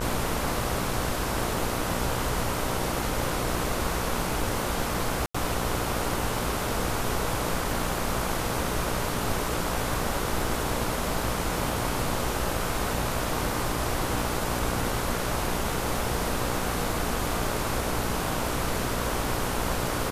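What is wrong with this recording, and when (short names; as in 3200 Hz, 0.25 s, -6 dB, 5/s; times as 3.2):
buzz 60 Hz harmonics 26 -33 dBFS
5.26–5.34 gap 85 ms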